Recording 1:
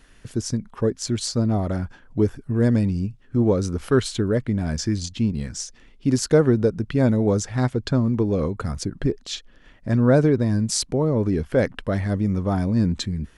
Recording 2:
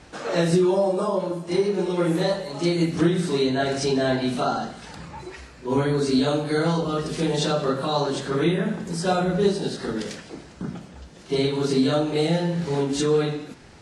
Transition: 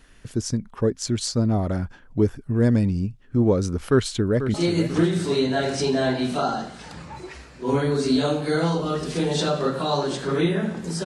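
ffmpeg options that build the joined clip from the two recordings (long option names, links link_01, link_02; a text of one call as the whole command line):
ffmpeg -i cue0.wav -i cue1.wav -filter_complex "[0:a]apad=whole_dur=11.05,atrim=end=11.05,atrim=end=4.542[link_01];[1:a]atrim=start=2.568:end=9.08[link_02];[link_01][link_02]acrossfade=duration=0.004:curve1=hsin:curve2=hsin,asplit=2[link_03][link_04];[link_04]afade=type=in:start_time=3.89:duration=0.01,afade=type=out:start_time=4.54:duration=0.01,aecho=0:1:490|980|1470|1960:0.316228|0.126491|0.0505964|0.0202386[link_05];[link_03][link_05]amix=inputs=2:normalize=0" out.wav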